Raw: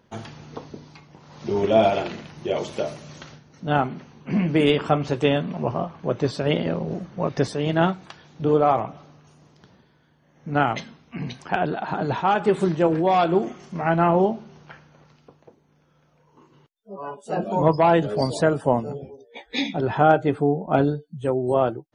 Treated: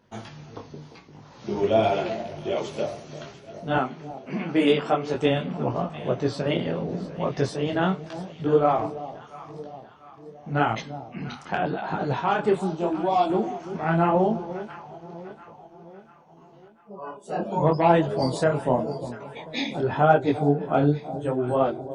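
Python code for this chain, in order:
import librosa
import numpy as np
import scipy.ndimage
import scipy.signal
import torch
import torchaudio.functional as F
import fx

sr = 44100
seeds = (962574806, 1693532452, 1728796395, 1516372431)

y = fx.highpass(x, sr, hz=220.0, slope=12, at=(3.76, 5.14))
y = fx.fixed_phaser(y, sr, hz=460.0, stages=6, at=(12.57, 13.3))
y = fx.echo_alternate(y, sr, ms=346, hz=840.0, feedback_pct=69, wet_db=-12.5)
y = fx.detune_double(y, sr, cents=29)
y = F.gain(torch.from_numpy(y), 1.5).numpy()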